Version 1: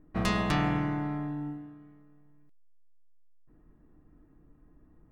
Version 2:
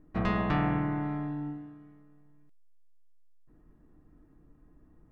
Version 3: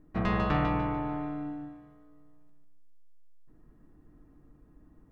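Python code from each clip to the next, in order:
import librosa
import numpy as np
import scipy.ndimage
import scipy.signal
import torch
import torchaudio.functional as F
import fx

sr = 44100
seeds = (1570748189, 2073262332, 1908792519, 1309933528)

y1 = fx.env_lowpass_down(x, sr, base_hz=2100.0, full_db=-25.5)
y2 = fx.echo_feedback(y1, sr, ms=147, feedback_pct=36, wet_db=-4.0)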